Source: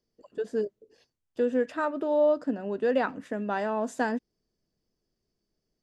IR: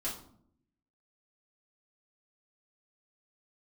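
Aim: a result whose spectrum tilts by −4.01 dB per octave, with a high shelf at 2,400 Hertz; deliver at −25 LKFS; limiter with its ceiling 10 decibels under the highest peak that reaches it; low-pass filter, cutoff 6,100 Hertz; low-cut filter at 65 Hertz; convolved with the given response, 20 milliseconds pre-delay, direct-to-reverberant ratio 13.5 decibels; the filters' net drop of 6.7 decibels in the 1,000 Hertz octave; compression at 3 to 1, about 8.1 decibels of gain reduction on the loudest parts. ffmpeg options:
-filter_complex "[0:a]highpass=65,lowpass=6100,equalizer=frequency=1000:width_type=o:gain=-8,highshelf=frequency=2400:gain=-6,acompressor=threshold=-33dB:ratio=3,alimiter=level_in=9dB:limit=-24dB:level=0:latency=1,volume=-9dB,asplit=2[link_01][link_02];[1:a]atrim=start_sample=2205,adelay=20[link_03];[link_02][link_03]afir=irnorm=-1:irlink=0,volume=-16dB[link_04];[link_01][link_04]amix=inputs=2:normalize=0,volume=16.5dB"

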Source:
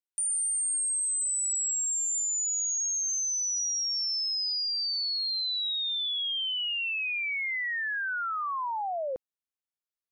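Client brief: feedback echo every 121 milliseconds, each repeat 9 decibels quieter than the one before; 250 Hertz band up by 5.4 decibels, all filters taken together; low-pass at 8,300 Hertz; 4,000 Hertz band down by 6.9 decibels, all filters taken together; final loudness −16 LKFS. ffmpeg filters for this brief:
ffmpeg -i in.wav -af "lowpass=8300,equalizer=frequency=250:width_type=o:gain=7.5,equalizer=frequency=4000:width_type=o:gain=-9,aecho=1:1:121|242|363|484:0.355|0.124|0.0435|0.0152,volume=15dB" out.wav

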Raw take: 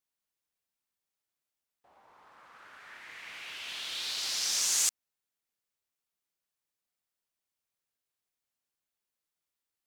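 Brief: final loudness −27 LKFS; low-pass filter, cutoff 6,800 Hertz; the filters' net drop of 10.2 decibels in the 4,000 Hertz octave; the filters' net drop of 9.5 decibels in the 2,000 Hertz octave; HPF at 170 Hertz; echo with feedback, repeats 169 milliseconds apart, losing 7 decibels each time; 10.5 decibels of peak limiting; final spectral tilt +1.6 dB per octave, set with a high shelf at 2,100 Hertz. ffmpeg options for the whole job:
ffmpeg -i in.wav -af "highpass=170,lowpass=6800,equalizer=frequency=2000:width_type=o:gain=-7,highshelf=frequency=2100:gain=-6,equalizer=frequency=4000:width_type=o:gain=-4.5,alimiter=level_in=12dB:limit=-24dB:level=0:latency=1,volume=-12dB,aecho=1:1:169|338|507|676|845:0.447|0.201|0.0905|0.0407|0.0183,volume=18dB" out.wav

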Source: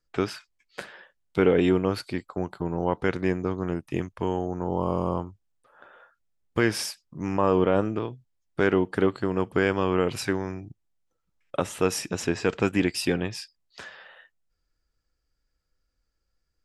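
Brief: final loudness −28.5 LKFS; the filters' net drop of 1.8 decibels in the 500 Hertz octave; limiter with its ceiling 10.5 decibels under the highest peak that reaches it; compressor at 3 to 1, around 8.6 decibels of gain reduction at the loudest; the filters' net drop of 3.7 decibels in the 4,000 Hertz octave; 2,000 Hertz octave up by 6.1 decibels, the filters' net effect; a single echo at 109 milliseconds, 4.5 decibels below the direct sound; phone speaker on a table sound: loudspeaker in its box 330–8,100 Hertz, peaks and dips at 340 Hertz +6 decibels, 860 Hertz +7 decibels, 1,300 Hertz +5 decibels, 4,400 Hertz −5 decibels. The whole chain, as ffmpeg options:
ffmpeg -i in.wav -af "equalizer=frequency=500:width_type=o:gain=-5,equalizer=frequency=2000:width_type=o:gain=8,equalizer=frequency=4000:width_type=o:gain=-6,acompressor=threshold=-29dB:ratio=3,alimiter=limit=-23dB:level=0:latency=1,highpass=frequency=330:width=0.5412,highpass=frequency=330:width=1.3066,equalizer=frequency=340:width_type=q:width=4:gain=6,equalizer=frequency=860:width_type=q:width=4:gain=7,equalizer=frequency=1300:width_type=q:width=4:gain=5,equalizer=frequency=4400:width_type=q:width=4:gain=-5,lowpass=frequency=8100:width=0.5412,lowpass=frequency=8100:width=1.3066,aecho=1:1:109:0.596,volume=8dB" out.wav

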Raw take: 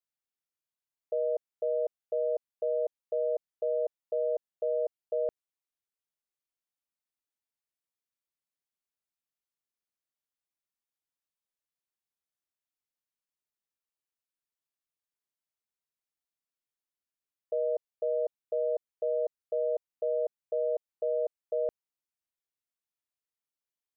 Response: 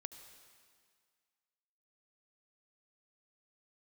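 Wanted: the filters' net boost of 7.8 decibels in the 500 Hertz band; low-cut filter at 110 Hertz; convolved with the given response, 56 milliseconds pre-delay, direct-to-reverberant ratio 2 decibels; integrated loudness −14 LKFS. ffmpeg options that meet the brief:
-filter_complex "[0:a]highpass=110,equalizer=frequency=500:width_type=o:gain=9,asplit=2[link_01][link_02];[1:a]atrim=start_sample=2205,adelay=56[link_03];[link_02][link_03]afir=irnorm=-1:irlink=0,volume=2.5dB[link_04];[link_01][link_04]amix=inputs=2:normalize=0,volume=7.5dB"

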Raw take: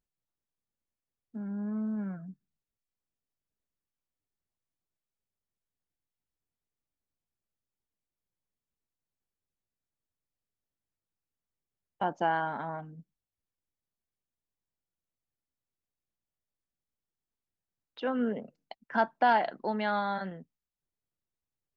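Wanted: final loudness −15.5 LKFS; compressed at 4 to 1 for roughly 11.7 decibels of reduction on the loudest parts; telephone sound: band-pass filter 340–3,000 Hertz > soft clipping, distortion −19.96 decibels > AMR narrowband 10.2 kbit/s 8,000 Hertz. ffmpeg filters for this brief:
ffmpeg -i in.wav -af "acompressor=threshold=-34dB:ratio=4,highpass=340,lowpass=3000,asoftclip=threshold=-27.5dB,volume=27dB" -ar 8000 -c:a libopencore_amrnb -b:a 10200 out.amr

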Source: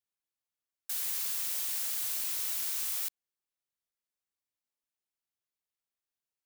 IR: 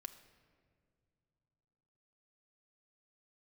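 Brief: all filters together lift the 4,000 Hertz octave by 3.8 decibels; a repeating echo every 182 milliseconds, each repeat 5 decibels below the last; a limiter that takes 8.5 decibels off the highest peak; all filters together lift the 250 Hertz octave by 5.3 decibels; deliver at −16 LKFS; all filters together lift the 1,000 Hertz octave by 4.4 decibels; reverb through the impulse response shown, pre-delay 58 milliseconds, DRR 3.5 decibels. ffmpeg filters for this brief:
-filter_complex "[0:a]equalizer=frequency=250:width_type=o:gain=6.5,equalizer=frequency=1000:width_type=o:gain=5,equalizer=frequency=4000:width_type=o:gain=4.5,alimiter=level_in=5dB:limit=-24dB:level=0:latency=1,volume=-5dB,aecho=1:1:182|364|546|728|910|1092|1274:0.562|0.315|0.176|0.0988|0.0553|0.031|0.0173,asplit=2[link_01][link_02];[1:a]atrim=start_sample=2205,adelay=58[link_03];[link_02][link_03]afir=irnorm=-1:irlink=0,volume=1.5dB[link_04];[link_01][link_04]amix=inputs=2:normalize=0,volume=17.5dB"

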